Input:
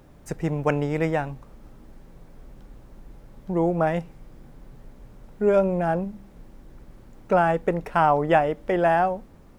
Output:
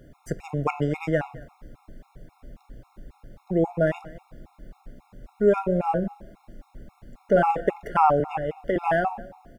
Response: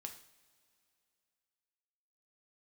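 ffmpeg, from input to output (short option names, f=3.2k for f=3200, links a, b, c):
-filter_complex "[0:a]asettb=1/sr,asplit=3[a][b][c];[a]atrim=end=5.764[d];[b]atrim=start=5.76:end=7.69,asetpts=PTS-STARTPTS,afade=t=in:d=0.004:c=qsin,afade=t=out:st=1.926:d=0.004:c=qsin,asplit=2[e][f];[f]adelay=40,volume=-10dB[g];[e][g]amix=inputs=2:normalize=0,atrim=end_sample=85113[h];[c]atrim=start=7.686[i];[d][h]acrossfade=d=0.004:c1=hsin:c2=qsin[j];[j][i]acrossfade=d=0.004:c1=qsin:c2=hsin,asettb=1/sr,asplit=3[k][l][m];[k]atrim=end=8.204[n];[l]atrim=start=8.2:end=8.76,asetpts=PTS-STARTPTS,afade=t=in:d=0.004:c=qsin,afade=t=out:st=0.556:d=0.004:c=qsin,acrossover=split=150[o][p];[p]acompressor=threshold=-24dB:ratio=4[q];[o][q]amix=inputs=2:normalize=0[r];[m]atrim=start=8.756[s];[n][r]acrossfade=d=0.004:c1=hsin:c2=qsin[t];[t][s]acrossfade=d=0.004:c1=qsin:c2=hsin,aecho=1:1:216:0.0841,asplit=2[u][v];[1:a]atrim=start_sample=2205,asetrate=36603,aresample=44100,lowpass=5.1k[w];[v][w]afir=irnorm=-1:irlink=0,volume=-6dB[x];[u][x]amix=inputs=2:normalize=0,afftfilt=real='re*gt(sin(2*PI*3.7*pts/sr)*(1-2*mod(floor(b*sr/1024/710),2)),0)':imag='im*gt(sin(2*PI*3.7*pts/sr)*(1-2*mod(floor(b*sr/1024/710),2)),0)':win_size=1024:overlap=0.75"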